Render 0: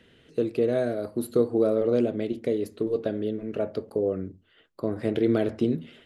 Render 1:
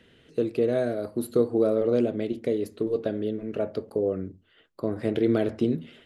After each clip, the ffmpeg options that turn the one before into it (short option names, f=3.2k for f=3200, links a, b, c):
-af anull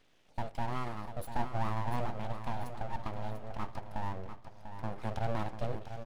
-filter_complex "[0:a]aeval=exprs='abs(val(0))':c=same,asplit=2[a][b];[b]aecho=0:1:694|1388|2082|2776:0.335|0.134|0.0536|0.0214[c];[a][c]amix=inputs=2:normalize=0,volume=-8.5dB"